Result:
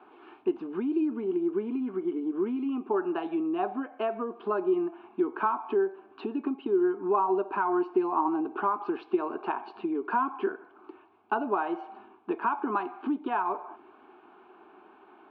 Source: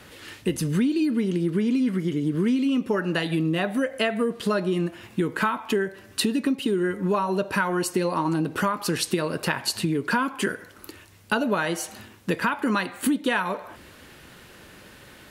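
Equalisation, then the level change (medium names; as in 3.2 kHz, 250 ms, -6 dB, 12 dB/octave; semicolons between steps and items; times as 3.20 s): distance through air 220 m; cabinet simulation 350–2400 Hz, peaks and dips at 380 Hz +8 dB, 760 Hz +8 dB, 1.1 kHz +3 dB, 2.2 kHz +7 dB; static phaser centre 530 Hz, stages 6; -2.0 dB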